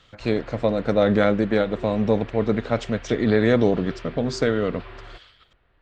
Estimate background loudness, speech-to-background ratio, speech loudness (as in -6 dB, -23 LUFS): -41.5 LUFS, 19.0 dB, -22.5 LUFS